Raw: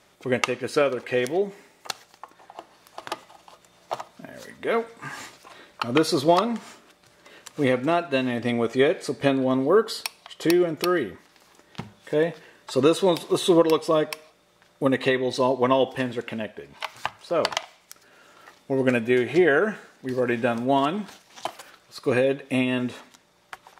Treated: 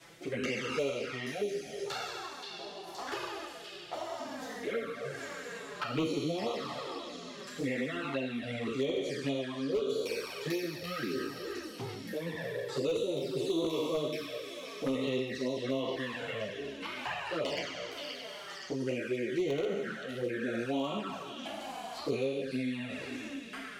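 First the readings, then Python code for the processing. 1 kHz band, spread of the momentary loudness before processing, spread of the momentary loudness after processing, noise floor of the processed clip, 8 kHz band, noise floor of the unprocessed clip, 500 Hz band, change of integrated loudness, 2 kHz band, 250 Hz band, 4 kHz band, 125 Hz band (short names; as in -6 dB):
-12.5 dB, 16 LU, 9 LU, -46 dBFS, -9.0 dB, -60 dBFS, -11.0 dB, -12.0 dB, -9.5 dB, -10.5 dB, -7.0 dB, -9.0 dB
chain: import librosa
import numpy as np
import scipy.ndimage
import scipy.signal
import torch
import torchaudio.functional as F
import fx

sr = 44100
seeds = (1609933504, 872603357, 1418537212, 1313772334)

y = fx.spec_trails(x, sr, decay_s=1.94)
y = fx.highpass(y, sr, hz=66.0, slope=6)
y = fx.peak_eq(y, sr, hz=890.0, db=-4.5, octaves=0.96)
y = fx.rotary(y, sr, hz=0.85)
y = fx.chorus_voices(y, sr, voices=6, hz=0.72, base_ms=11, depth_ms=4.1, mix_pct=60)
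y = 10.0 ** (-13.5 / 20.0) * (np.abs((y / 10.0 ** (-13.5 / 20.0) + 3.0) % 4.0 - 2.0) - 1.0)
y = fx.dynamic_eq(y, sr, hz=9400.0, q=2.3, threshold_db=-54.0, ratio=4.0, max_db=-6)
y = fx.env_flanger(y, sr, rest_ms=6.1, full_db=-20.0)
y = fx.echo_stepped(y, sr, ms=524, hz=3900.0, octaves=0.7, feedback_pct=70, wet_db=-8.0)
y = fx.band_squash(y, sr, depth_pct=70)
y = F.gain(torch.from_numpy(y), -7.5).numpy()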